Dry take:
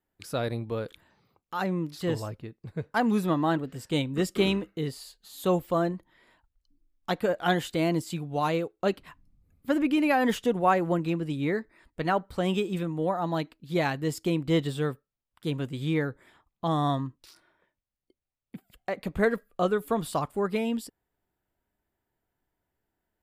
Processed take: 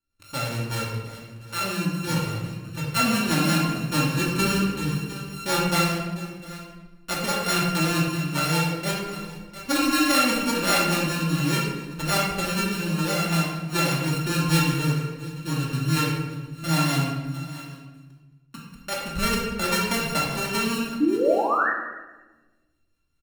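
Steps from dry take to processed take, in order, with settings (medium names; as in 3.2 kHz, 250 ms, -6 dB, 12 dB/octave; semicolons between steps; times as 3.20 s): sorted samples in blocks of 32 samples; peaking EQ 410 Hz -8.5 dB 2.9 oct; delay 702 ms -16 dB; level rider gain up to 4 dB; painted sound rise, 21.00–21.70 s, 280–1900 Hz -24 dBFS; rotary cabinet horn 5 Hz; simulated room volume 750 m³, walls mixed, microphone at 2.5 m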